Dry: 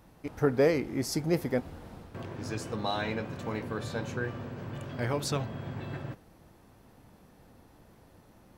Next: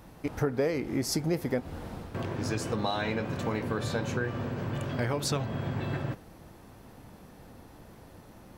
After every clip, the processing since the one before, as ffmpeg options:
-af "acompressor=threshold=0.0224:ratio=4,volume=2.11"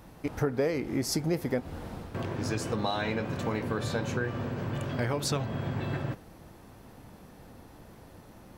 -af anull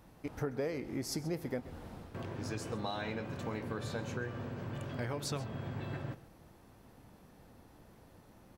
-af "aecho=1:1:133:0.133,volume=0.398"

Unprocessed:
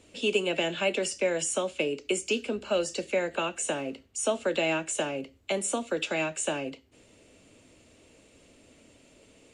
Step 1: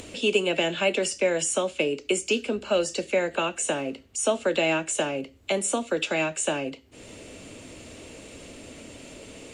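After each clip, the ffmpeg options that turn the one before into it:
-af "acompressor=mode=upward:threshold=0.0158:ratio=2.5,volume=1.5"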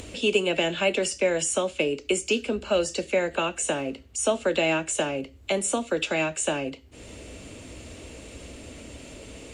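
-af "equalizer=f=60:w=1.4:g=12"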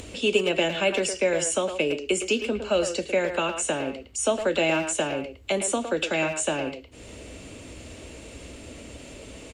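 -filter_complex "[0:a]asplit=2[s0][s1];[s1]adelay=110,highpass=300,lowpass=3400,asoftclip=type=hard:threshold=0.112,volume=0.447[s2];[s0][s2]amix=inputs=2:normalize=0"

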